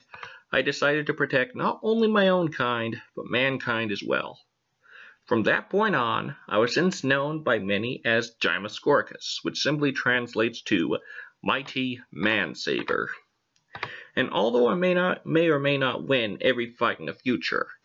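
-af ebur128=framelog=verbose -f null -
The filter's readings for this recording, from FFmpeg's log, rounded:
Integrated loudness:
  I:         -25.2 LUFS
  Threshold: -35.6 LUFS
Loudness range:
  LRA:         3.5 LU
  Threshold: -45.7 LUFS
  LRA low:   -27.7 LUFS
  LRA high:  -24.3 LUFS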